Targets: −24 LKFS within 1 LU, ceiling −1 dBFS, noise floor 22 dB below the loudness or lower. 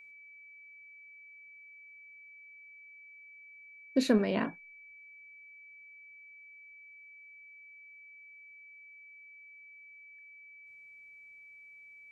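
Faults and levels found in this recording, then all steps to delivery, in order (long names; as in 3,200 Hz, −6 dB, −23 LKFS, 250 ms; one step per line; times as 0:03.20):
interfering tone 2,300 Hz; level of the tone −51 dBFS; integrated loudness −30.0 LKFS; sample peak −14.5 dBFS; target loudness −24.0 LKFS
→ notch filter 2,300 Hz, Q 30
level +6 dB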